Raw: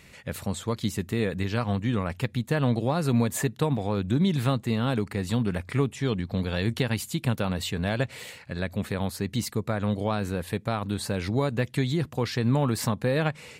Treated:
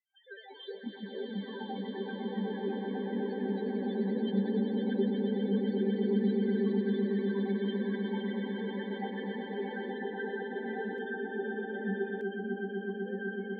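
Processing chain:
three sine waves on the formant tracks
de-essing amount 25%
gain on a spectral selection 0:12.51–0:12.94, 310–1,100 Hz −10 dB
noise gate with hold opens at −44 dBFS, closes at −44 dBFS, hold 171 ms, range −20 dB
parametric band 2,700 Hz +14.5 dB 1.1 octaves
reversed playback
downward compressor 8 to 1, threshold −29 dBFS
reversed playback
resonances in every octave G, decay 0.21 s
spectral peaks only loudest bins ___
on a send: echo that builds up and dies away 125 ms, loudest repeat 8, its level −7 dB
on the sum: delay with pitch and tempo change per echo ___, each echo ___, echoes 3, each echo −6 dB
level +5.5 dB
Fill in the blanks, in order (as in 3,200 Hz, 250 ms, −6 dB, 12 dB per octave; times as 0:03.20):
4, 95 ms, +2 semitones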